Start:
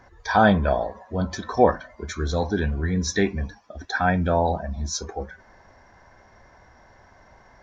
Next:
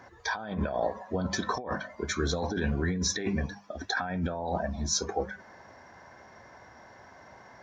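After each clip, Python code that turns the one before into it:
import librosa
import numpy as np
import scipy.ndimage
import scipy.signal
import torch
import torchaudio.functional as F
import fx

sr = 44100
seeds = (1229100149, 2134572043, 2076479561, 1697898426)

y = scipy.signal.sosfilt(scipy.signal.butter(2, 110.0, 'highpass', fs=sr, output='sos'), x)
y = fx.hum_notches(y, sr, base_hz=50, count=4)
y = fx.over_compress(y, sr, threshold_db=-28.0, ratio=-1.0)
y = y * librosa.db_to_amplitude(-2.5)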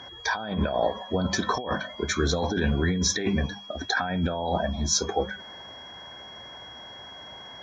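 y = x + 10.0 ** (-47.0 / 20.0) * np.sin(2.0 * np.pi * 3300.0 * np.arange(len(x)) / sr)
y = y * librosa.db_to_amplitude(4.5)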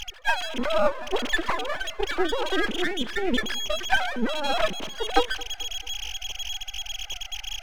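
y = fx.sine_speech(x, sr)
y = np.maximum(y, 0.0)
y = fx.echo_feedback(y, sr, ms=220, feedback_pct=54, wet_db=-21.5)
y = y * librosa.db_to_amplitude(5.0)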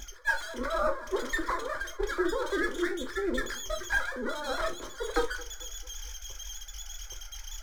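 y = fx.fixed_phaser(x, sr, hz=740.0, stages=6)
y = fx.vibrato(y, sr, rate_hz=8.4, depth_cents=67.0)
y = fx.rev_gated(y, sr, seeds[0], gate_ms=90, shape='falling', drr_db=3.5)
y = y * librosa.db_to_amplitude(-3.0)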